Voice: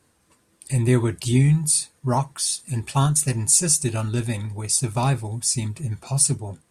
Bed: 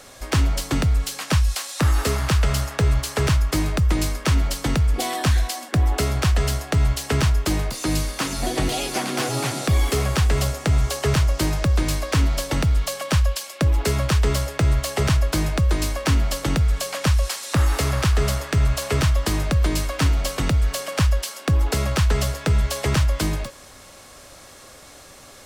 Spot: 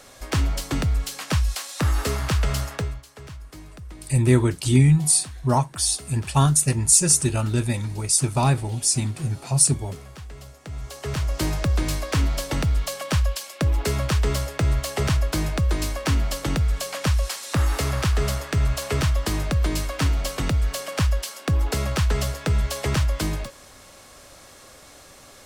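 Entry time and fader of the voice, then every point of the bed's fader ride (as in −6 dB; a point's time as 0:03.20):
3.40 s, +1.5 dB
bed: 0:02.75 −3 dB
0:03.04 −20.5 dB
0:10.48 −20.5 dB
0:11.43 −2.5 dB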